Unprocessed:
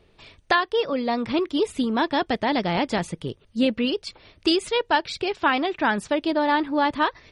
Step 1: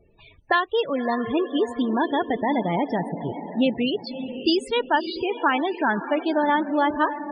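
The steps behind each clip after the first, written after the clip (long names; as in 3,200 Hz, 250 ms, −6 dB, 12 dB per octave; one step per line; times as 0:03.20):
feedback delay with all-pass diffusion 587 ms, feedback 44%, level −10 dB
spectral peaks only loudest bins 32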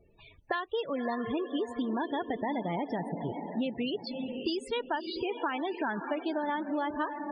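downward compressor, threshold −24 dBFS, peak gain reduction 9 dB
level −4.5 dB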